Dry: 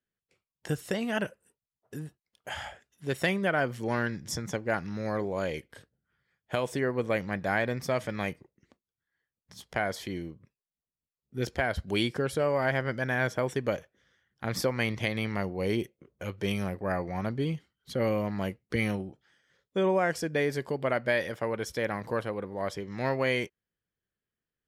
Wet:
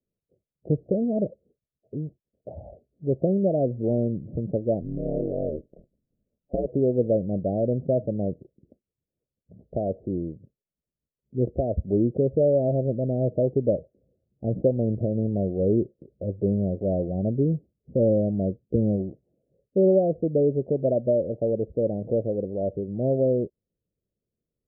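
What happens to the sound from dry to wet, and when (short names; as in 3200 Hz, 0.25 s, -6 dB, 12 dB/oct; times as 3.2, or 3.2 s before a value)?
4.8–6.67 ring modulator 71 Hz
whole clip: steep low-pass 650 Hz 72 dB/oct; gain +7.5 dB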